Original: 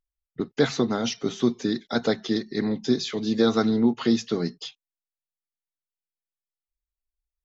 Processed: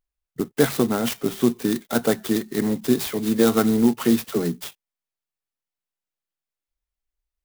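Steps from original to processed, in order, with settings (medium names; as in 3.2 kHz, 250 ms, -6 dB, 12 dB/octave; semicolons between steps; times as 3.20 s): 4.24–4.66 s: phase dispersion lows, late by 45 ms, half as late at 560 Hz; sampling jitter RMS 0.052 ms; trim +3 dB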